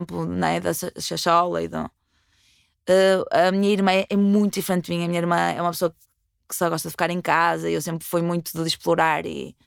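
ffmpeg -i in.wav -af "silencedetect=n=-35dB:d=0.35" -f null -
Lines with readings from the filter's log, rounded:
silence_start: 1.87
silence_end: 2.87 | silence_duration: 1.00
silence_start: 5.90
silence_end: 6.50 | silence_duration: 0.60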